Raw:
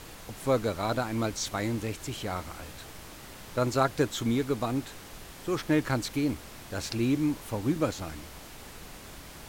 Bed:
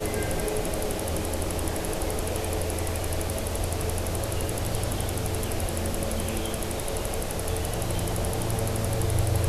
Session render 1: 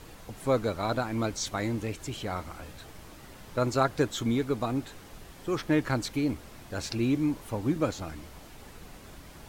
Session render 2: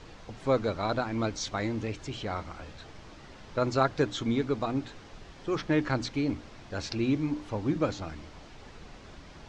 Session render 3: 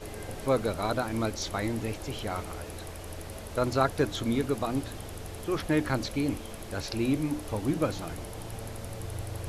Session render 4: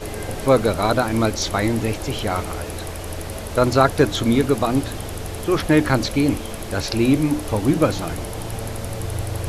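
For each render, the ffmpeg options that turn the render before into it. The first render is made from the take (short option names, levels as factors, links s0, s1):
-af "afftdn=nr=6:nf=-47"
-af "lowpass=f=6100:w=0.5412,lowpass=f=6100:w=1.3066,bandreject=f=60:t=h:w=6,bandreject=f=120:t=h:w=6,bandreject=f=180:t=h:w=6,bandreject=f=240:t=h:w=6,bandreject=f=300:t=h:w=6"
-filter_complex "[1:a]volume=0.237[s0];[0:a][s0]amix=inputs=2:normalize=0"
-af "volume=3.35,alimiter=limit=0.891:level=0:latency=1"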